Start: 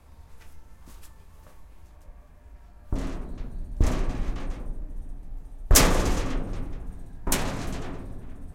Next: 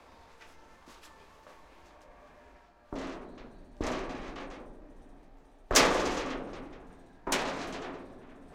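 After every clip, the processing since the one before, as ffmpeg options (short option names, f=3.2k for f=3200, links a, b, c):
-filter_complex "[0:a]acrossover=split=260 6200:gain=0.1 1 0.158[a][b][c];[a][b][c]amix=inputs=3:normalize=0,areverse,acompressor=mode=upward:threshold=-47dB:ratio=2.5,areverse"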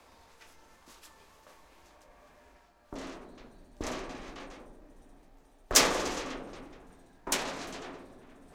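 -af "highshelf=f=5.2k:g=11,volume=-3.5dB"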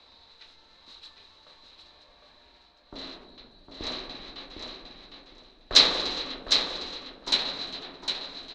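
-filter_complex "[0:a]lowpass=f=4k:t=q:w=15,asplit=2[a][b];[b]aecho=0:1:757|1514|2271:0.501|0.0902|0.0162[c];[a][c]amix=inputs=2:normalize=0,volume=-2.5dB"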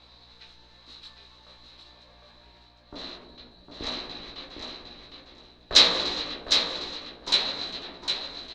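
-filter_complex "[0:a]aeval=exprs='val(0)+0.000631*(sin(2*PI*60*n/s)+sin(2*PI*2*60*n/s)/2+sin(2*PI*3*60*n/s)/3+sin(2*PI*4*60*n/s)/4+sin(2*PI*5*60*n/s)/5)':c=same,asplit=2[a][b];[b]adelay=17,volume=-3.5dB[c];[a][c]amix=inputs=2:normalize=0"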